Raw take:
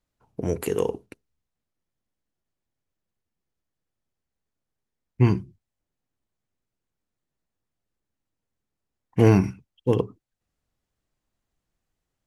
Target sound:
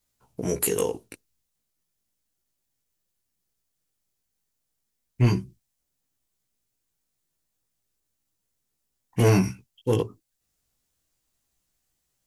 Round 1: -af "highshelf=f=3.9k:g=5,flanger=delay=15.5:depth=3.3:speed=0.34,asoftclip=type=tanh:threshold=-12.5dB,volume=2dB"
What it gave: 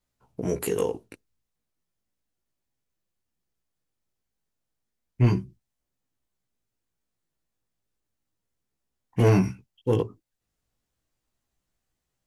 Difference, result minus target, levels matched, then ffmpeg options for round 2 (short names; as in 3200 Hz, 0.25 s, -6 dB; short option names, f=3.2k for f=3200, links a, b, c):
8000 Hz band -8.5 dB
-af "highshelf=f=3.9k:g=16.5,flanger=delay=15.5:depth=3.3:speed=0.34,asoftclip=type=tanh:threshold=-12.5dB,volume=2dB"